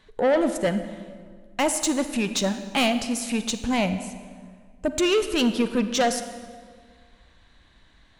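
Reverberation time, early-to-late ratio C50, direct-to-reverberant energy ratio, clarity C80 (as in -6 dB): 1.8 s, 10.0 dB, 9.5 dB, 11.5 dB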